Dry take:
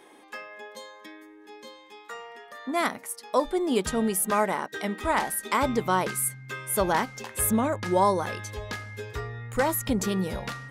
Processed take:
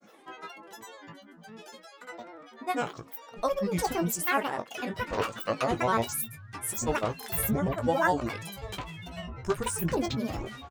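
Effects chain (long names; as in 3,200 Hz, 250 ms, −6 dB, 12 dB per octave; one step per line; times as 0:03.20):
granular cloud, pitch spread up and down by 12 semitones
double-tracking delay 18 ms −10 dB
level −2.5 dB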